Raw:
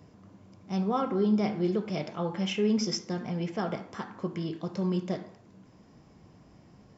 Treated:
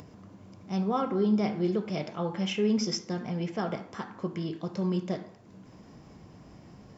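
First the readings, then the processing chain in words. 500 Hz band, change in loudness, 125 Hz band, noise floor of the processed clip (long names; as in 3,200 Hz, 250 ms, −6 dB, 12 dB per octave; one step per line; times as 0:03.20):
0.0 dB, 0.0 dB, 0.0 dB, −53 dBFS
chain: upward compression, threshold −43 dBFS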